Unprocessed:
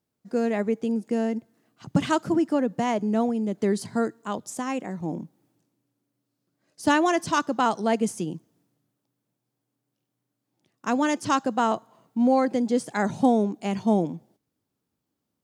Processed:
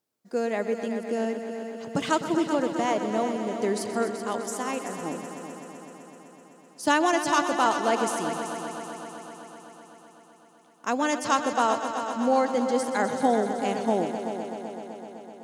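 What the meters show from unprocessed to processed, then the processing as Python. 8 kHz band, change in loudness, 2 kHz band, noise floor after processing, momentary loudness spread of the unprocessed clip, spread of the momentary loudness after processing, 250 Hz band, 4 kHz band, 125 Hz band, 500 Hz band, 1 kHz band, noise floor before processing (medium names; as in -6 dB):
+3.5 dB, -1.5 dB, +1.5 dB, -55 dBFS, 11 LU, 17 LU, -4.5 dB, +2.0 dB, -7.5 dB, +0.5 dB, +1.5 dB, -82 dBFS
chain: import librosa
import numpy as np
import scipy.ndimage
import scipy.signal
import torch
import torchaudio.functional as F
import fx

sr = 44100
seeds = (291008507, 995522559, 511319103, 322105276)

y = fx.bass_treble(x, sr, bass_db=-12, treble_db=2)
y = fx.echo_heads(y, sr, ms=127, heads='all three', feedback_pct=70, wet_db=-13.0)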